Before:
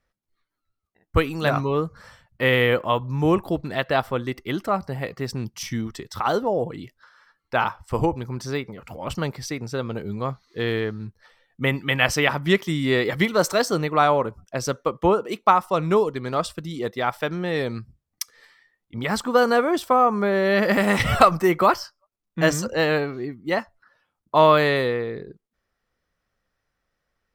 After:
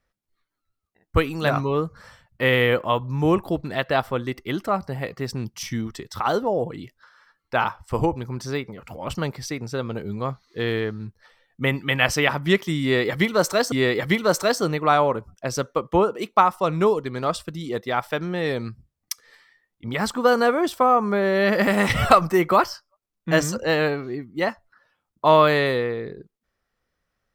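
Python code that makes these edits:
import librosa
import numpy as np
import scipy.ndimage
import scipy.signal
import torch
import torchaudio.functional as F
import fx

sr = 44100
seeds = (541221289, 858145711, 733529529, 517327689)

y = fx.edit(x, sr, fx.repeat(start_s=12.82, length_s=0.9, count=2), tone=tone)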